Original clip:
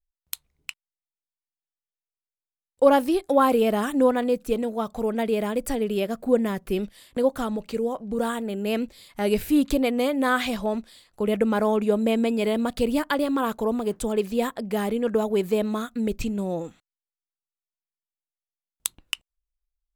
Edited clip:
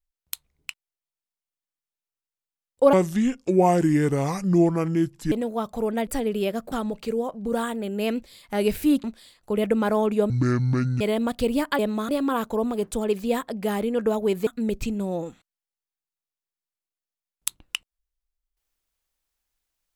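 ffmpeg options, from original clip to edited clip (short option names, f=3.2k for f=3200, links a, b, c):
-filter_complex "[0:a]asplit=11[a][b][c][d][e][f][g][h][i][j][k];[a]atrim=end=2.934[l];[b]atrim=start=2.93:end=4.53,asetpts=PTS-STARTPTS,asetrate=29547,aresample=44100,atrim=end_sample=105313,asetpts=PTS-STARTPTS[m];[c]atrim=start=4.526:end=5.282[n];[d]atrim=start=5.618:end=6.272[o];[e]atrim=start=7.378:end=9.702[p];[f]atrim=start=10.738:end=12.004[q];[g]atrim=start=12:end=12.39,asetpts=PTS-STARTPTS,asetrate=24255,aresample=44100[r];[h]atrim=start=12.386:end=13.172[s];[i]atrim=start=15.548:end=15.852[t];[j]atrim=start=13.168:end=15.552[u];[k]atrim=start=15.848[v];[l][m]acrossfade=d=0.004:c1=hsin:c2=hsin[w];[w][n]acrossfade=d=0.004:c1=hsin:c2=hsin[x];[x][o]acrossfade=d=0.004:c1=hsin:c2=hsin[y];[y][p]acrossfade=d=0.004:c1=hsin:c2=hsin[z];[z][q]acrossfade=d=0.004:c1=hsin:c2=hsin[aa];[aa][r]acrossfade=d=0.004:c1=hsin:c2=hsin[ab];[ab][s]acrossfade=d=0.004:c1=hsin:c2=hsin[ac];[ac][t]acrossfade=d=0.004:c1=hsin:c2=hsin[ad];[ad][u]acrossfade=d=0.004:c1=hsin:c2=hsin[ae];[ae][v]acrossfade=d=0.004:c1=hsin:c2=hsin"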